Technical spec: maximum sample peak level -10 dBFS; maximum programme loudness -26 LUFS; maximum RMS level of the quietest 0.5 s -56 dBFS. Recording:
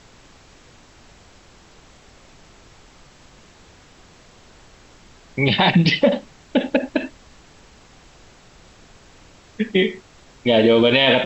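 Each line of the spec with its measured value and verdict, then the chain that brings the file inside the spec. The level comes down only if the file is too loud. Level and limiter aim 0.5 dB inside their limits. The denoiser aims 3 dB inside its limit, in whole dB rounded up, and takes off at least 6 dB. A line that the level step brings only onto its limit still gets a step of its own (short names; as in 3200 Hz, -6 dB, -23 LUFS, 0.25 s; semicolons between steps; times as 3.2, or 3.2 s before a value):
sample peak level -5.5 dBFS: fail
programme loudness -18.0 LUFS: fail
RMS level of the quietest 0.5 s -49 dBFS: fail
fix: gain -8.5 dB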